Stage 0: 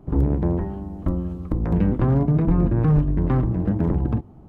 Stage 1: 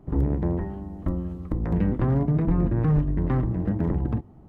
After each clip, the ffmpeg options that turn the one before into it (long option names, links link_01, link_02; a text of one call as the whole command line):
ffmpeg -i in.wav -af "equalizer=frequency=1900:width=7.4:gain=6,volume=-3.5dB" out.wav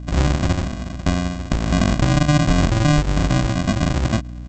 ffmpeg -i in.wav -af "aresample=16000,acrusher=samples=36:mix=1:aa=0.000001,aresample=44100,aeval=exprs='val(0)+0.0158*(sin(2*PI*60*n/s)+sin(2*PI*2*60*n/s)/2+sin(2*PI*3*60*n/s)/3+sin(2*PI*4*60*n/s)/4+sin(2*PI*5*60*n/s)/5)':channel_layout=same,volume=5.5dB" out.wav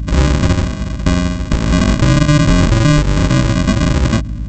ffmpeg -i in.wav -af "apsyclip=12dB,asuperstop=centerf=720:order=8:qfactor=5.5,aeval=exprs='val(0)+0.141*(sin(2*PI*50*n/s)+sin(2*PI*2*50*n/s)/2+sin(2*PI*3*50*n/s)/3+sin(2*PI*4*50*n/s)/4+sin(2*PI*5*50*n/s)/5)':channel_layout=same,volume=-5.5dB" out.wav